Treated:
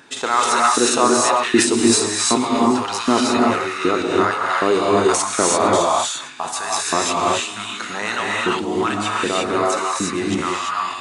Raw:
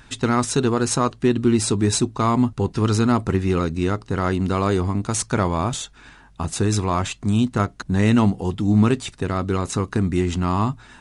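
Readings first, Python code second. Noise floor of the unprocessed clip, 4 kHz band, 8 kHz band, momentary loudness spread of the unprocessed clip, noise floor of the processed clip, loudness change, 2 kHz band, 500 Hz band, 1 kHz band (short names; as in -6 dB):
-49 dBFS, +9.0 dB, +8.0 dB, 6 LU, -30 dBFS, +3.0 dB, +9.0 dB, +5.0 dB, +8.0 dB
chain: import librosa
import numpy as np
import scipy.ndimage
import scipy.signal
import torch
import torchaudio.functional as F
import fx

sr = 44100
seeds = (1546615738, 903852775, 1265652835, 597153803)

p1 = fx.low_shelf(x, sr, hz=110.0, db=6.0)
p2 = p1 + fx.echo_single(p1, sr, ms=454, db=-19.0, dry=0)
p3 = fx.filter_lfo_highpass(p2, sr, shape='saw_up', hz=1.3, low_hz=300.0, high_hz=3400.0, q=1.6)
p4 = fx.rev_gated(p3, sr, seeds[0], gate_ms=370, shape='rising', drr_db=-4.0)
p5 = fx.sustainer(p4, sr, db_per_s=71.0)
y = p5 * librosa.db_to_amplitude(1.5)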